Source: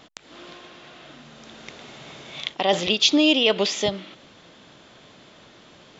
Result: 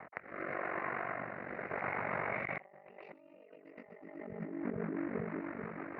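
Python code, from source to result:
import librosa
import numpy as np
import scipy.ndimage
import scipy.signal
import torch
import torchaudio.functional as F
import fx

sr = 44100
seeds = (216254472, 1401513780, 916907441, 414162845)

y = fx.law_mismatch(x, sr, coded='A')
y = scipy.signal.sosfilt(scipy.signal.butter(2, 160.0, 'highpass', fs=sr, output='sos'), y)
y = fx.rotary_switch(y, sr, hz=0.9, then_hz=6.0, switch_at_s=3.47)
y = scipy.signal.sosfilt(scipy.signal.ellip(4, 1.0, 40, 2100.0, 'lowpass', fs=sr, output='sos'), y)
y = fx.peak_eq(y, sr, hz=280.0, db=-12.5, octaves=1.2)
y = fx.echo_split(y, sr, split_hz=340.0, low_ms=438, high_ms=122, feedback_pct=52, wet_db=-3.0)
y = fx.over_compress(y, sr, threshold_db=-52.0, ratio=-1.0)
y = y * np.sin(2.0 * np.pi * 24.0 * np.arange(len(y)) / sr)
y = y * 10.0 ** (8.5 / 20.0)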